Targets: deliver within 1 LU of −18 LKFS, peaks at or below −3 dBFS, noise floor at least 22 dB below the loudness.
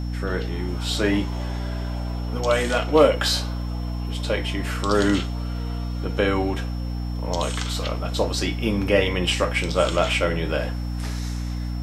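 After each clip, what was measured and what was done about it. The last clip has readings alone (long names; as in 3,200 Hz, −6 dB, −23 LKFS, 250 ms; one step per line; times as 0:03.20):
mains hum 60 Hz; hum harmonics up to 300 Hz; level of the hum −25 dBFS; interfering tone 5,400 Hz; level of the tone −47 dBFS; integrated loudness −24.0 LKFS; sample peak −3.5 dBFS; target loudness −18.0 LKFS
→ hum removal 60 Hz, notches 5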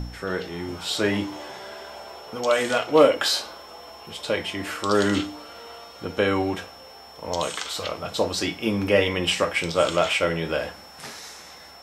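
mains hum none found; interfering tone 5,400 Hz; level of the tone −47 dBFS
→ notch filter 5,400 Hz, Q 30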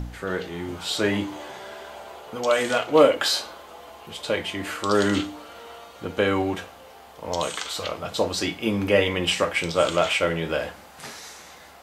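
interfering tone none found; integrated loudness −24.0 LKFS; sample peak −4.0 dBFS; target loudness −18.0 LKFS
→ level +6 dB
brickwall limiter −3 dBFS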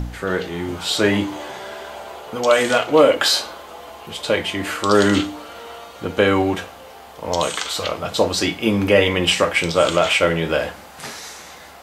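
integrated loudness −18.5 LKFS; sample peak −3.0 dBFS; background noise floor −41 dBFS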